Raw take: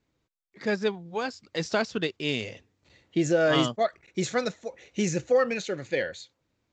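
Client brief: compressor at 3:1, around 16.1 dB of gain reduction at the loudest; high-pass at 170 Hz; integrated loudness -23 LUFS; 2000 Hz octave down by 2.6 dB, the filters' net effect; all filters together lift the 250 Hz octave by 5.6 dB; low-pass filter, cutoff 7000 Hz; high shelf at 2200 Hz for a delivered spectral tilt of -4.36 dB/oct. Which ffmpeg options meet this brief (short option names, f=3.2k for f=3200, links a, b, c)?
-af "highpass=170,lowpass=7k,equalizer=f=250:t=o:g=9,equalizer=f=2k:t=o:g=-8,highshelf=f=2.2k:g=7.5,acompressor=threshold=-38dB:ratio=3,volume=16dB"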